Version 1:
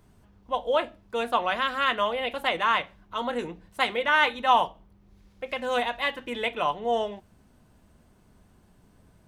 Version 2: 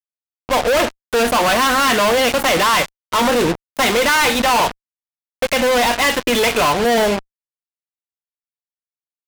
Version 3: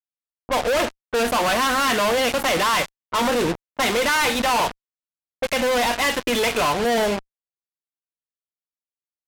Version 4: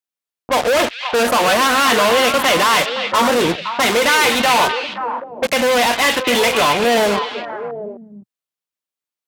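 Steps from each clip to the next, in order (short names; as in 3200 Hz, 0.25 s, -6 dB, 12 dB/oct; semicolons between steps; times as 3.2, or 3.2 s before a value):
sample leveller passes 1; fuzz box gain 43 dB, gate -39 dBFS
low-pass opened by the level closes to 610 Hz, open at -17 dBFS; gain -5 dB
HPF 130 Hz 6 dB/oct; on a send: delay with a stepping band-pass 0.26 s, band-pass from 3000 Hz, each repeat -1.4 oct, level -3 dB; on the sum: gain +5.5 dB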